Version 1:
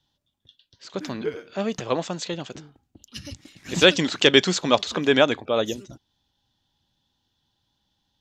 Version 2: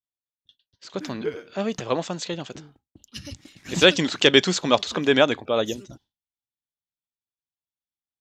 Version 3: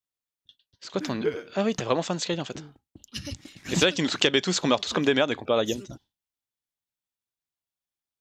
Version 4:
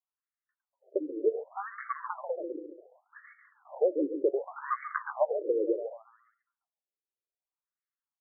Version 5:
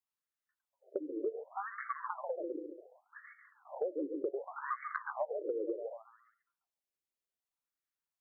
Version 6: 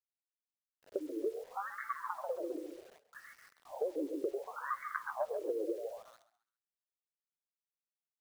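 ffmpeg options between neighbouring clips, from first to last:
ffmpeg -i in.wav -af "agate=range=-33dB:threshold=-49dB:ratio=3:detection=peak" out.wav
ffmpeg -i in.wav -af "acompressor=threshold=-20dB:ratio=6,volume=2dB" out.wav
ffmpeg -i in.wav -af "aecho=1:1:140|280|420|560|700:0.355|0.167|0.0784|0.0368|0.0173,afftfilt=real='re*between(b*sr/1024,380*pow(1600/380,0.5+0.5*sin(2*PI*0.67*pts/sr))/1.41,380*pow(1600/380,0.5+0.5*sin(2*PI*0.67*pts/sr))*1.41)':imag='im*between(b*sr/1024,380*pow(1600/380,0.5+0.5*sin(2*PI*0.67*pts/sr))/1.41,380*pow(1600/380,0.5+0.5*sin(2*PI*0.67*pts/sr))*1.41)':win_size=1024:overlap=0.75" out.wav
ffmpeg -i in.wav -af "acompressor=threshold=-33dB:ratio=4,volume=-1dB" out.wav
ffmpeg -i in.wav -filter_complex "[0:a]acrusher=bits=9:mix=0:aa=0.000001,asplit=4[link_01][link_02][link_03][link_04];[link_02]adelay=134,afreqshift=45,volume=-17dB[link_05];[link_03]adelay=268,afreqshift=90,volume=-26.9dB[link_06];[link_04]adelay=402,afreqshift=135,volume=-36.8dB[link_07];[link_01][link_05][link_06][link_07]amix=inputs=4:normalize=0" out.wav

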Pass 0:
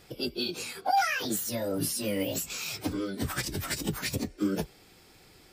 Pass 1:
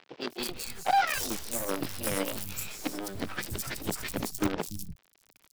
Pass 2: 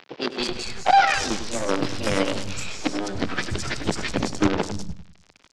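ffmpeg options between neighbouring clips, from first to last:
ffmpeg -i in.wav -filter_complex "[0:a]acrusher=bits=5:dc=4:mix=0:aa=0.000001,acrossover=split=160|4600[link_01][link_02][link_03];[link_03]adelay=210[link_04];[link_01]adelay=290[link_05];[link_05][link_02][link_04]amix=inputs=3:normalize=0,acompressor=mode=upward:threshold=-51dB:ratio=2.5" out.wav
ffmpeg -i in.wav -filter_complex "[0:a]lowpass=frequency=6700:width=0.5412,lowpass=frequency=6700:width=1.3066,asplit=2[link_01][link_02];[link_02]adelay=100,lowpass=frequency=3200:poles=1,volume=-10dB,asplit=2[link_03][link_04];[link_04]adelay=100,lowpass=frequency=3200:poles=1,volume=0.37,asplit=2[link_05][link_06];[link_06]adelay=100,lowpass=frequency=3200:poles=1,volume=0.37,asplit=2[link_07][link_08];[link_08]adelay=100,lowpass=frequency=3200:poles=1,volume=0.37[link_09];[link_03][link_05][link_07][link_09]amix=inputs=4:normalize=0[link_10];[link_01][link_10]amix=inputs=2:normalize=0,volume=8.5dB" out.wav

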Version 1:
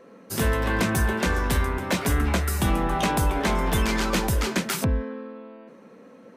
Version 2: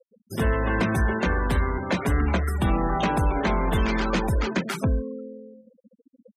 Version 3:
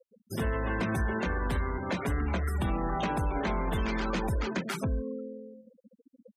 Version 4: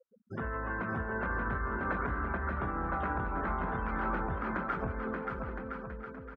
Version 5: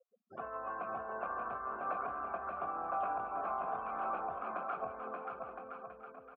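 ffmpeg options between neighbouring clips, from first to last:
ffmpeg -i in.wav -af "afftfilt=real='re*gte(hypot(re,im),0.0355)':imag='im*gte(hypot(re,im),0.0355)':win_size=1024:overlap=0.75,highshelf=frequency=4700:gain=-9,acontrast=43,volume=-5dB" out.wav
ffmpeg -i in.wav -af "alimiter=limit=-20.5dB:level=0:latency=1:release=145,volume=-2dB" out.wav
ffmpeg -i in.wav -af "acompressor=threshold=-31dB:ratio=4,lowpass=frequency=1400:width_type=q:width=3.4,aecho=1:1:580|1015|1341|1586|1769:0.631|0.398|0.251|0.158|0.1,volume=-4dB" out.wav
ffmpeg -i in.wav -filter_complex "[0:a]asplit=3[link_01][link_02][link_03];[link_01]bandpass=frequency=730:width_type=q:width=8,volume=0dB[link_04];[link_02]bandpass=frequency=1090:width_type=q:width=8,volume=-6dB[link_05];[link_03]bandpass=frequency=2440:width_type=q:width=8,volume=-9dB[link_06];[link_04][link_05][link_06]amix=inputs=3:normalize=0,volume=7.5dB" out.wav

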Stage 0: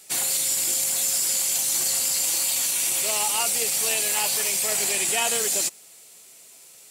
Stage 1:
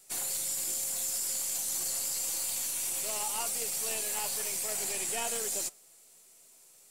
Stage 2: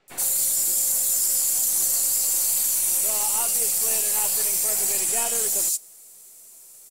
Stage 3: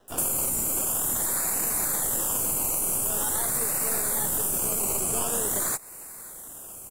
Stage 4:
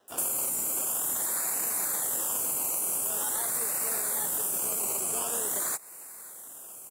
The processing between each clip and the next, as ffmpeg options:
ffmpeg -i in.wav -filter_complex "[0:a]flanger=delay=6.5:depth=9.1:regen=87:speed=1.4:shape=triangular,acrossover=split=200|1700|4700[link_01][link_02][link_03][link_04];[link_03]aeval=exprs='max(val(0),0)':channel_layout=same[link_05];[link_01][link_02][link_05][link_04]amix=inputs=4:normalize=0,volume=-4.5dB" out.wav
ffmpeg -i in.wav -filter_complex "[0:a]highshelf=frequency=7500:gain=10.5,acrossover=split=3000[link_01][link_02];[link_02]adelay=80[link_03];[link_01][link_03]amix=inputs=2:normalize=0,volume=5dB" out.wav
ffmpeg -i in.wav -filter_complex "[0:a]acrossover=split=340[link_01][link_02];[link_02]acompressor=threshold=-30dB:ratio=5[link_03];[link_01][link_03]amix=inputs=2:normalize=0,acrossover=split=490|6600[link_04][link_05][link_06];[link_05]acrusher=samples=19:mix=1:aa=0.000001:lfo=1:lforange=11.4:lforate=0.46[link_07];[link_04][link_07][link_06]amix=inputs=3:normalize=0,volume=6.5dB" out.wav
ffmpeg -i in.wav -af "highpass=frequency=410:poles=1,volume=-3dB" out.wav

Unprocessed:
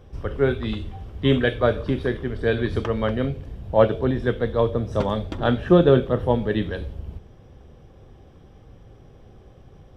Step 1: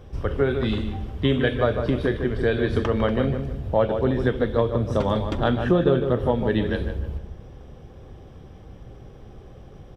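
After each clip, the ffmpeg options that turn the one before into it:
ffmpeg -i in.wav -filter_complex "[0:a]acompressor=threshold=-22dB:ratio=3,asplit=2[link_01][link_02];[link_02]adelay=152,lowpass=frequency=2000:poles=1,volume=-7dB,asplit=2[link_03][link_04];[link_04]adelay=152,lowpass=frequency=2000:poles=1,volume=0.37,asplit=2[link_05][link_06];[link_06]adelay=152,lowpass=frequency=2000:poles=1,volume=0.37,asplit=2[link_07][link_08];[link_08]adelay=152,lowpass=frequency=2000:poles=1,volume=0.37[link_09];[link_01][link_03][link_05][link_07][link_09]amix=inputs=5:normalize=0,volume=3.5dB" out.wav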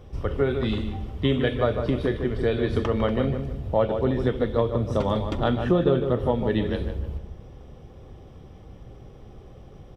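ffmpeg -i in.wav -af "bandreject=frequency=1600:width=9.6,volume=-1.5dB" out.wav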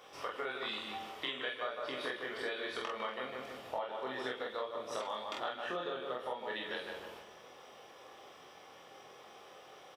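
ffmpeg -i in.wav -filter_complex "[0:a]highpass=940,acompressor=threshold=-42dB:ratio=6,asplit=2[link_01][link_02];[link_02]aecho=0:1:23|47:0.668|0.708[link_03];[link_01][link_03]amix=inputs=2:normalize=0,volume=3.5dB" out.wav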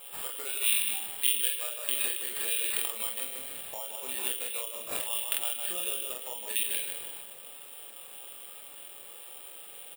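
ffmpeg -i in.wav -af "highshelf=frequency=2300:width_type=q:width=1.5:gain=13,acrusher=samples=7:mix=1:aa=0.000001,aexciter=amount=2:drive=9.9:freq=7200,volume=-4.5dB" out.wav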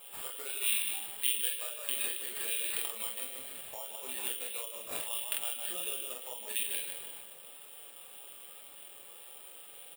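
ffmpeg -i in.wav -af "flanger=delay=4.6:depth=7.7:regen=-42:speed=1.7:shape=sinusoidal" out.wav

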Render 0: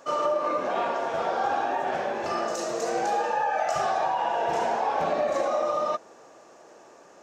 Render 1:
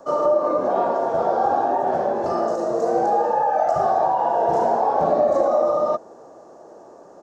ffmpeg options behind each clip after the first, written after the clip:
ffmpeg -i in.wav -filter_complex "[0:a]firequalizer=gain_entry='entry(680,0);entry(2400,-22);entry(4400,-12)':delay=0.05:min_phase=1,acrossover=split=360|450|2800[link_01][link_02][link_03][link_04];[link_04]alimiter=level_in=20.5dB:limit=-24dB:level=0:latency=1:release=465,volume=-20.5dB[link_05];[link_01][link_02][link_03][link_05]amix=inputs=4:normalize=0,volume=8dB" out.wav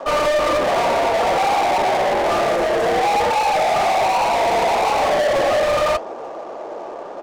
ffmpeg -i in.wav -filter_complex "[0:a]asplit=2[link_01][link_02];[link_02]highpass=frequency=720:poles=1,volume=28dB,asoftclip=type=tanh:threshold=-7dB[link_03];[link_01][link_03]amix=inputs=2:normalize=0,lowpass=frequency=4400:poles=1,volume=-6dB,adynamicsmooth=sensitivity=6.5:basefreq=880,flanger=delay=2.8:depth=3.6:regen=-74:speed=1.8:shape=triangular" out.wav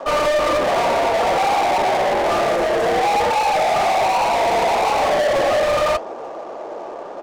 ffmpeg -i in.wav -af anull out.wav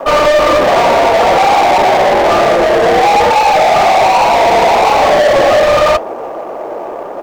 ffmpeg -i in.wav -filter_complex "[0:a]asplit=2[link_01][link_02];[link_02]adynamicsmooth=sensitivity=4.5:basefreq=1300,volume=0dB[link_03];[link_01][link_03]amix=inputs=2:normalize=0,acrusher=bits=8:mix=0:aa=0.5,volume=3dB" out.wav

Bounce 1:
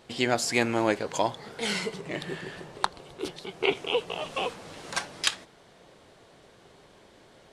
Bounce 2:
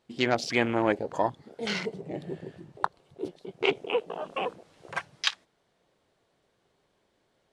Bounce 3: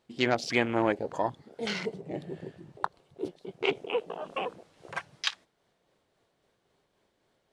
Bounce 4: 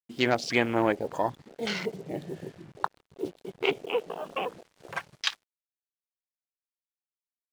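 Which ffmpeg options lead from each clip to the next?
ffmpeg -i in.wav -af "afwtdn=0.0224" out.wav
ffmpeg -i in.wav -af "tremolo=f=3.7:d=0.31" out.wav
ffmpeg -i in.wav -af "acrusher=bits=8:mix=0:aa=0.5,volume=1.5dB" out.wav

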